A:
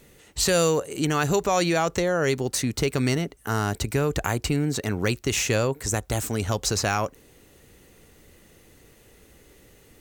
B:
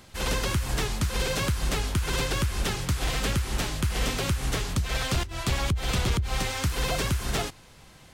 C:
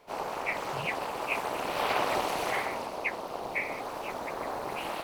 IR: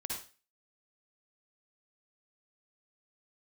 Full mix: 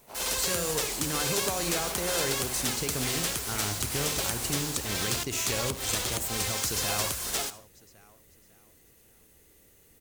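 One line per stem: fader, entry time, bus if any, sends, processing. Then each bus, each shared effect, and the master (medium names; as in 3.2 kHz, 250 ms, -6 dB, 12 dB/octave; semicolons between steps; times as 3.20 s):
-13.0 dB, 0.00 s, bus A, send -4.5 dB, echo send -13.5 dB, none
-6.0 dB, 0.00 s, no bus, send -13 dB, no echo send, tone controls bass -13 dB, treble +9 dB; bit crusher 6-bit
-5.5 dB, 0.00 s, bus A, no send, no echo send, auto duck -8 dB, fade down 0.25 s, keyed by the first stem
bus A: 0.0 dB, treble shelf 5.9 kHz +10.5 dB; peak limiter -25 dBFS, peak gain reduction 7 dB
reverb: on, RT60 0.35 s, pre-delay 47 ms
echo: feedback delay 552 ms, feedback 39%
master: treble shelf 8.6 kHz +4.5 dB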